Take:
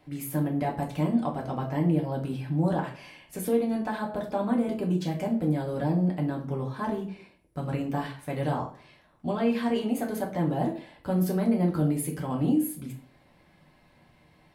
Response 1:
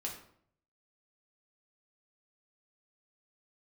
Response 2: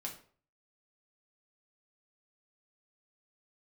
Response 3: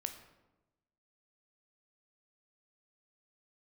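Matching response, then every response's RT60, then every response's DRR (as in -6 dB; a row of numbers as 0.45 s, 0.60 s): 2; 0.65 s, 0.45 s, 1.0 s; -1.5 dB, -1.5 dB, 6.5 dB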